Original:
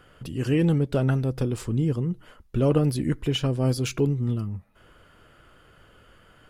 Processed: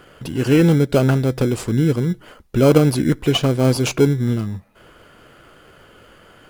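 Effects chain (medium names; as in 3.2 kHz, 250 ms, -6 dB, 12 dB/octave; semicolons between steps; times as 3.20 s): bass shelf 130 Hz -11 dB; in parallel at -7.5 dB: sample-and-hold 24×; on the sum: trim +8 dB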